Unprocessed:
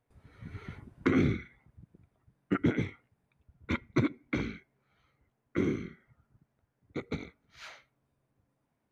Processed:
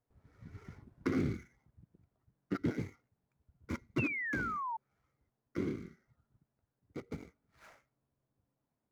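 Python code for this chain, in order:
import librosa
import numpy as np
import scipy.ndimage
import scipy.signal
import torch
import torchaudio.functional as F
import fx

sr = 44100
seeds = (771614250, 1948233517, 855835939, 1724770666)

y = scipy.signal.medfilt(x, 15)
y = fx.spec_paint(y, sr, seeds[0], shape='fall', start_s=3.98, length_s=0.79, low_hz=870.0, high_hz=2800.0, level_db=-31.0)
y = y * librosa.db_to_amplitude(-6.5)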